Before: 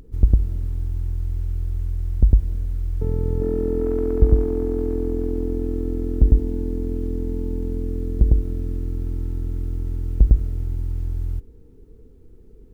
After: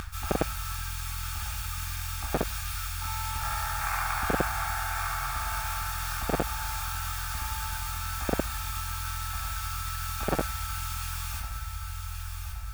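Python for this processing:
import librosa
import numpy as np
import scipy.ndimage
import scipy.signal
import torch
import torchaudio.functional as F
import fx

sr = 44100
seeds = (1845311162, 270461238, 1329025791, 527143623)

p1 = fx.spec_quant(x, sr, step_db=15)
p2 = scipy.signal.sosfilt(scipy.signal.cheby2(4, 60, [180.0, 470.0], 'bandstop', fs=sr, output='sos'), p1)
p3 = p2 + fx.echo_feedback(p2, sr, ms=1124, feedback_pct=46, wet_db=-7.0, dry=0)
p4 = fx.room_shoebox(p3, sr, seeds[0], volume_m3=500.0, walls='furnished', distance_m=3.8)
p5 = np.clip(10.0 ** (0.5 / 20.0) * p4, -1.0, 1.0) / 10.0 ** (0.5 / 20.0)
p6 = fx.notch_comb(p5, sr, f0_hz=1000.0)
p7 = fx.dynamic_eq(p6, sr, hz=150.0, q=5.1, threshold_db=-43.0, ratio=4.0, max_db=4)
p8 = fx.spectral_comp(p7, sr, ratio=10.0)
y = p8 * librosa.db_to_amplitude(-3.5)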